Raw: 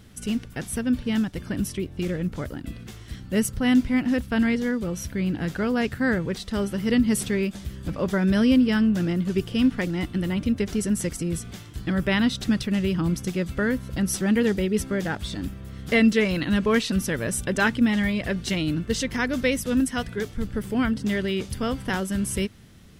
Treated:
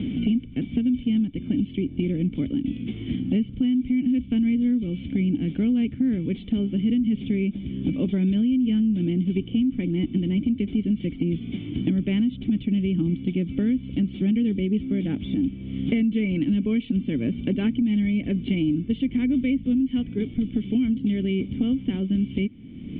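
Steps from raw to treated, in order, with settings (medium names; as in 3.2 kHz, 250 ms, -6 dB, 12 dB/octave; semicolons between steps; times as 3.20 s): cascade formant filter i; peak limiter -23.5 dBFS, peak gain reduction 11.5 dB; three bands compressed up and down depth 100%; trim +8 dB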